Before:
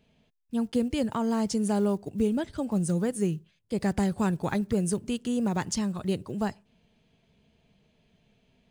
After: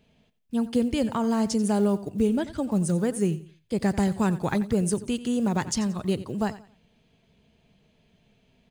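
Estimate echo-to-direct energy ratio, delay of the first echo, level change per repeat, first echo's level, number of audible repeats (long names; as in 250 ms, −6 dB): −15.5 dB, 89 ms, −10.5 dB, −16.0 dB, 2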